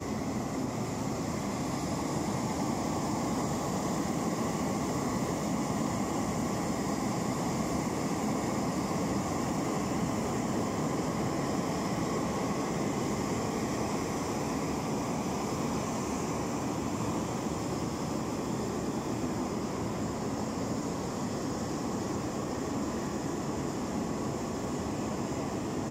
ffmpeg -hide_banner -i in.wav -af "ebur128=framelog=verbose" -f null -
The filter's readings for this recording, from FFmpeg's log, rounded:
Integrated loudness:
  I:         -32.7 LUFS
  Threshold: -42.7 LUFS
Loudness range:
  LRA:         2.3 LU
  Threshold: -52.6 LUFS
  LRA low:   -34.0 LUFS
  LRA high:  -31.7 LUFS